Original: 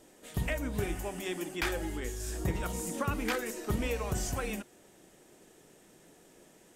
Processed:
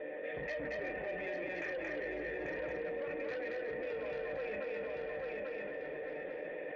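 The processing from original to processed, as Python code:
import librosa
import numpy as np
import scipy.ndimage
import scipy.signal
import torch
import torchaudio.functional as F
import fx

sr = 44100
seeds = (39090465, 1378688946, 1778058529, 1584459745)

p1 = 10.0 ** (-38.0 / 20.0) * np.tanh(x / 10.0 ** (-38.0 / 20.0))
p2 = fx.formant_cascade(p1, sr, vowel='e')
p3 = fx.low_shelf(p2, sr, hz=260.0, db=-11.0)
p4 = fx.comb_fb(p3, sr, f0_hz=150.0, decay_s=0.16, harmonics='all', damping=0.0, mix_pct=80)
p5 = fx.fold_sine(p4, sr, drive_db=14, ceiling_db=-39.0)
p6 = p5 + fx.echo_feedback(p5, sr, ms=841, feedback_pct=23, wet_db=-9.0, dry=0)
p7 = fx.rider(p6, sr, range_db=4, speed_s=0.5)
p8 = fx.low_shelf(p7, sr, hz=130.0, db=-4.5)
p9 = p8 + 10.0 ** (-3.0 / 20.0) * np.pad(p8, (int(227 * sr / 1000.0), 0))[:len(p8)]
p10 = fx.env_flatten(p9, sr, amount_pct=70)
y = p10 * 10.0 ** (3.0 / 20.0)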